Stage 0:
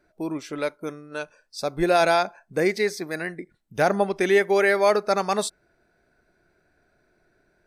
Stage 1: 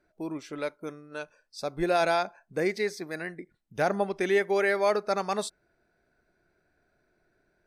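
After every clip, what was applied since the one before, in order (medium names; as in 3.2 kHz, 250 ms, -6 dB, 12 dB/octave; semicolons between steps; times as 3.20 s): treble shelf 9.4 kHz -5 dB; trim -5.5 dB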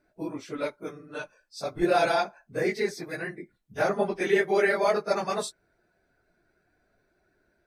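phase randomisation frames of 50 ms; trim +1 dB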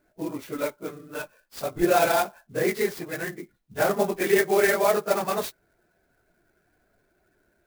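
sampling jitter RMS 0.04 ms; trim +2.5 dB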